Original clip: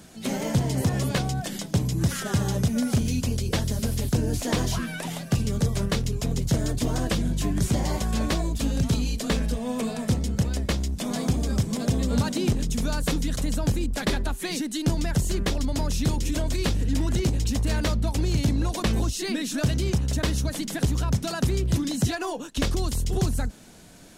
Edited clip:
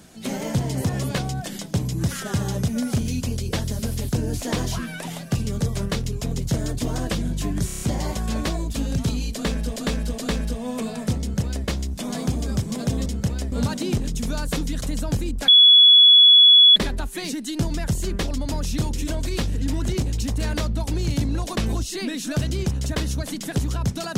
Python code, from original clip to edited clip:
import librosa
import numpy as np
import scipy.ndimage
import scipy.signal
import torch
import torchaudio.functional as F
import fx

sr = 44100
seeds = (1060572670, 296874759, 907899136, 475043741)

y = fx.edit(x, sr, fx.stutter(start_s=7.66, slice_s=0.03, count=6),
    fx.repeat(start_s=9.19, length_s=0.42, count=3),
    fx.duplicate(start_s=10.21, length_s=0.46, to_s=12.07),
    fx.insert_tone(at_s=14.03, length_s=1.28, hz=3390.0, db=-8.0), tone=tone)